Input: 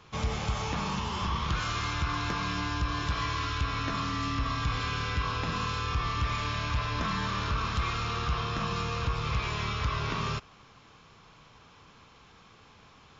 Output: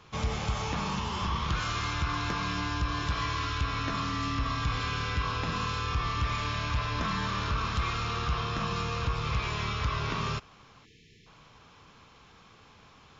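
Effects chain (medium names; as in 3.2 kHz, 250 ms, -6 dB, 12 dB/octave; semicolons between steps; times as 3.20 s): spectral selection erased 10.85–11.27 s, 480–1700 Hz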